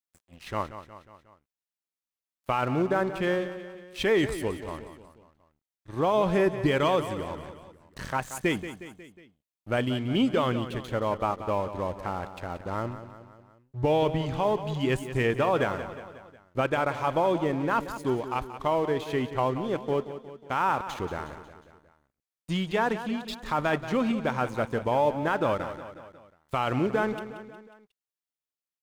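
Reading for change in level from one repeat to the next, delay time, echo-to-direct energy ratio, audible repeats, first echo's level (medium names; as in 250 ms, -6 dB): -5.0 dB, 181 ms, -10.5 dB, 4, -12.0 dB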